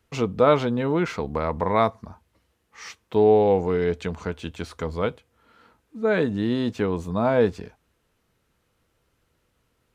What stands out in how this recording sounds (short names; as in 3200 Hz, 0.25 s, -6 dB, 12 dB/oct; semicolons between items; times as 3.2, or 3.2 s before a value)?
noise floor -71 dBFS; spectral tilt -6.0 dB/oct